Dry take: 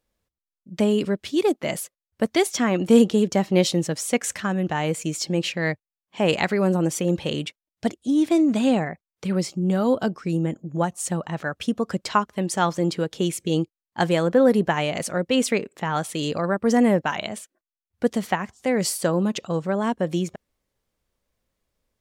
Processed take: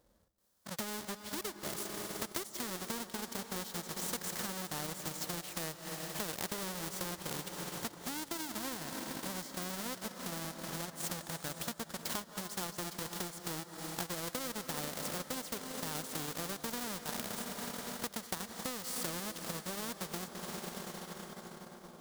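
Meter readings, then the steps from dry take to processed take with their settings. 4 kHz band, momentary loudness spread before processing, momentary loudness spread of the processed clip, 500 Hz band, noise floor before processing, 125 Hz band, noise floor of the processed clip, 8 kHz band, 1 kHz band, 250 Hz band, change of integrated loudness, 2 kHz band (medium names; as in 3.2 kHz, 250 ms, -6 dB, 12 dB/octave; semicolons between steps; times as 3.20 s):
-10.0 dB, 9 LU, 4 LU, -21.5 dB, under -85 dBFS, -19.0 dB, -54 dBFS, -7.5 dB, -15.5 dB, -21.5 dB, -16.0 dB, -14.0 dB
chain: square wave that keeps the level; harmonic-percussive split percussive -11 dB; high-pass 95 Hz 6 dB/octave; peaking EQ 2.5 kHz -9.5 dB 0.7 oct; algorithmic reverb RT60 4.3 s, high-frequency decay 1×, pre-delay 120 ms, DRR 9.5 dB; transient shaper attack +6 dB, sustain -7 dB; compression 5:1, threshold -30 dBFS, peak gain reduction 22 dB; spectrum-flattening compressor 2:1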